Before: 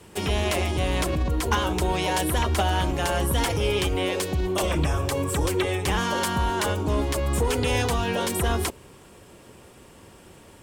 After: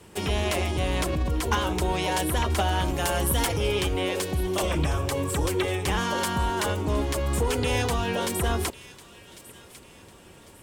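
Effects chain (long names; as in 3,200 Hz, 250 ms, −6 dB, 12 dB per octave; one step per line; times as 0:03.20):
0:02.85–0:03.47: high-shelf EQ 9,600 Hz +10 dB
delay with a high-pass on its return 1,099 ms, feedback 37%, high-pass 2,000 Hz, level −16 dB
level −1.5 dB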